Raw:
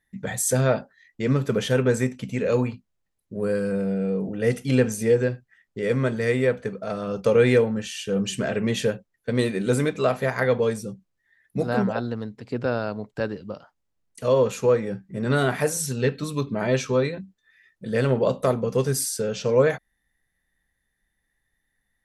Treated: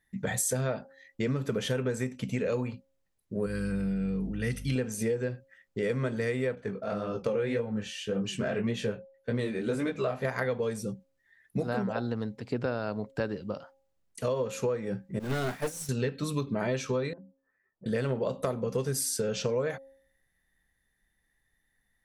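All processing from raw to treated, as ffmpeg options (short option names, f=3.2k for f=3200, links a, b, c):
-filter_complex "[0:a]asettb=1/sr,asplit=3[a][b][c];[a]atrim=end=3.464[d];[b]atrim=start=3.46:end=4.76,asetpts=PTS-STARTPTS,afade=t=in:d=0.004:c=qsin,afade=t=out:st=1.296:d=0.004:c=qsin,equalizer=f=570:t=o:w=1.5:g=-14.5,bandreject=f=7.1k:w=5.6,aeval=exprs='val(0)+0.0112*(sin(2*PI*50*n/s)+sin(2*PI*2*50*n/s)/2+sin(2*PI*3*50*n/s)/3+sin(2*PI*4*50*n/s)/4+sin(2*PI*5*50*n/s)/5)':c=same[e];[c]atrim=start=4.756[f];[d][e]acrossfade=d=0.004:c1=hsin:c2=qsin[g];[g][f]acrossfade=d=0.004:c1=qsin:c2=hsin,asettb=1/sr,asplit=3[h][i][j];[h]atrim=end=6.554[k];[i]atrim=start=6.55:end=10.25,asetpts=PTS-STARTPTS,afade=t=in:d=0.004:c=qsin,afade=t=out:st=3.696:d=0.004:c=qsin,lowpass=f=4k:p=1,flanger=delay=16.5:depth=6.6:speed=1.8[l];[j]atrim=start=10.246[m];[k][l]acrossfade=d=0.004:c1=hsin:c2=qsin[n];[n][m]acrossfade=d=0.004:c1=qsin:c2=hsin,asettb=1/sr,asplit=3[o][p][q];[o]atrim=end=15.194[r];[p]atrim=start=15.19:end=15.89,asetpts=PTS-STARTPTS,afade=t=in:d=0.004:c=qsin,afade=t=out:st=0.696:d=0.004:c=qsin,aeval=exprs='val(0)+0.5*0.0473*sgn(val(0))':c=same,agate=range=-33dB:threshold=-16dB:ratio=3:release=100:detection=peak,aeval=exprs='(tanh(12.6*val(0)+0.5)-tanh(0.5))/12.6':c=same[s];[q]atrim=start=15.886[t];[r][s]acrossfade=d=0.004:c1=hsin:c2=qsin[u];[u][t]acrossfade=d=0.004:c1=qsin:c2=hsin,asettb=1/sr,asplit=3[v][w][x];[v]atrim=end=17.134[y];[w]atrim=start=17.13:end=17.86,asetpts=PTS-STARTPTS,afade=t=in:d=0.004:c=qsin,afade=t=out:st=0.726:d=0.004:c=qsin,lowpass=f=1.1k:w=0.5412,lowpass=f=1.1k:w=1.3066,lowshelf=f=220:g=-12,acompressor=threshold=-45dB:ratio=5:attack=3.2:release=140:knee=1:detection=peak[z];[x]atrim=start=17.856[aa];[y][z]acrossfade=d=0.004:c1=hsin:c2=qsin[ab];[ab][aa]acrossfade=d=0.004:c1=qsin:c2=hsin,bandreject=f=270.3:t=h:w=4,bandreject=f=540.6:t=h:w=4,bandreject=f=810.9:t=h:w=4,acompressor=threshold=-26dB:ratio=10"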